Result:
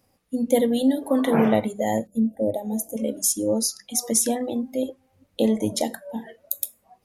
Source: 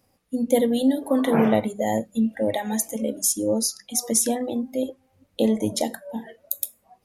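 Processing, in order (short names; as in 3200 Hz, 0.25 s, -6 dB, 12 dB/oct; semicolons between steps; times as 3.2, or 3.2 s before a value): 2.07–2.97 EQ curve 640 Hz 0 dB, 1500 Hz -28 dB, 13000 Hz -1 dB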